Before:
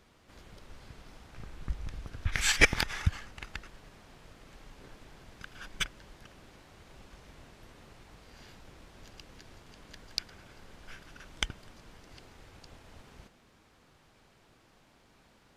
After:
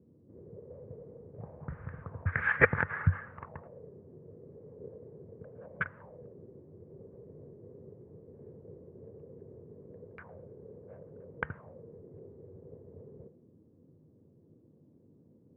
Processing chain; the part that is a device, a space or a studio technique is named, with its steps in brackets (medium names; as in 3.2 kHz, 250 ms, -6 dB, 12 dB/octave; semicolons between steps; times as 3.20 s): envelope filter bass rig (touch-sensitive low-pass 280–1500 Hz up, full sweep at -35 dBFS; cabinet simulation 88–2000 Hz, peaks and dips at 93 Hz +8 dB, 150 Hz +7 dB, 310 Hz -7 dB, 490 Hz +8 dB, 770 Hz -6 dB, 1.4 kHz -7 dB)